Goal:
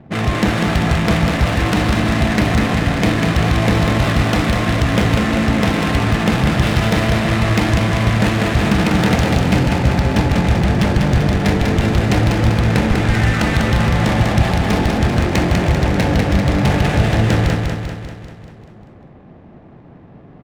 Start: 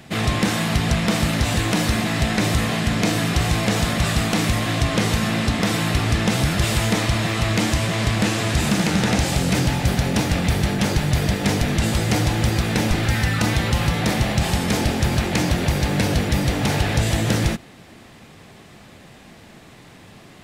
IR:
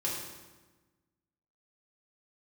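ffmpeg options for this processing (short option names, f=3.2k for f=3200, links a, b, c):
-af "adynamicsmooth=sensitivity=2.5:basefreq=710,aecho=1:1:196|392|588|784|980|1176|1372|1568:0.631|0.353|0.198|0.111|0.0621|0.0347|0.0195|0.0109,volume=3.5dB"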